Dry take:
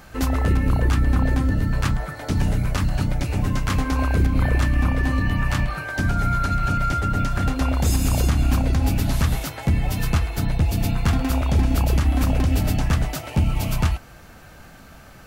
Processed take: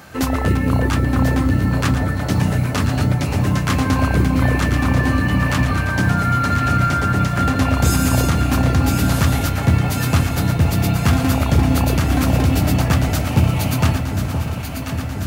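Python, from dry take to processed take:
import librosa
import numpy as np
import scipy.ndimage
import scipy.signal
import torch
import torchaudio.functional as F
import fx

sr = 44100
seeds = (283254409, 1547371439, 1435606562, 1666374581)

p1 = scipy.signal.sosfilt(scipy.signal.butter(4, 78.0, 'highpass', fs=sr, output='sos'), x)
p2 = fx.mod_noise(p1, sr, seeds[0], snr_db=35)
p3 = p2 + fx.echo_alternate(p2, sr, ms=519, hz=1000.0, feedback_pct=83, wet_db=-6.5, dry=0)
y = p3 * librosa.db_to_amplitude(5.0)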